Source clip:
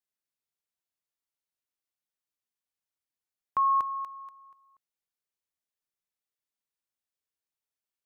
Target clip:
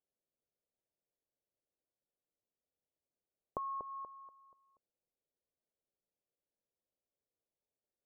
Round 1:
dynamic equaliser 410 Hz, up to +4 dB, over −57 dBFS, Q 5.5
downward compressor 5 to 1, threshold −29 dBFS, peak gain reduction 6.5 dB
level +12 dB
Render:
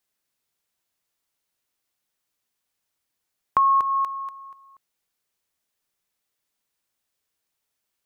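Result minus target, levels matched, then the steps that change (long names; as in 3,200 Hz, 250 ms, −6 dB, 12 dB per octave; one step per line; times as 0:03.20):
500 Hz band −17.0 dB
add after downward compressor: transistor ladder low-pass 660 Hz, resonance 45%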